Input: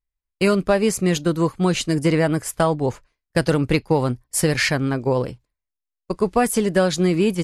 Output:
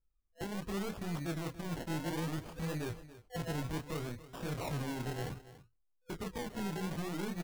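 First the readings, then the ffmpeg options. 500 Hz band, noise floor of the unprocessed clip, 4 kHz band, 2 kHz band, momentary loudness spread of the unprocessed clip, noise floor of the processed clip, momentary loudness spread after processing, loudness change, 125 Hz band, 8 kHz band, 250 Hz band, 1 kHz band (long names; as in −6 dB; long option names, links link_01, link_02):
−22.0 dB, −85 dBFS, −18.5 dB, −19.5 dB, 5 LU, −75 dBFS, 6 LU, −19.5 dB, −16.0 dB, −21.5 dB, −18.5 dB, −18.0 dB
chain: -filter_complex "[0:a]afftfilt=real='re*(1-between(b*sr/4096,500,2100))':imag='im*(1-between(b*sr/4096,500,2100))':win_size=4096:overlap=0.75,lowshelf=frequency=220:gain=4.5,acompressor=threshold=-27dB:ratio=8,aresample=16000,asoftclip=type=tanh:threshold=-36dB,aresample=44100,adynamicsmooth=sensitivity=3.5:basefreq=5800,flanger=delay=18:depth=7.6:speed=1.7,acrusher=samples=29:mix=1:aa=0.000001:lfo=1:lforange=17.4:lforate=0.63,asplit=2[link_01][link_02];[link_02]aecho=0:1:284:0.158[link_03];[link_01][link_03]amix=inputs=2:normalize=0,volume=3.5dB"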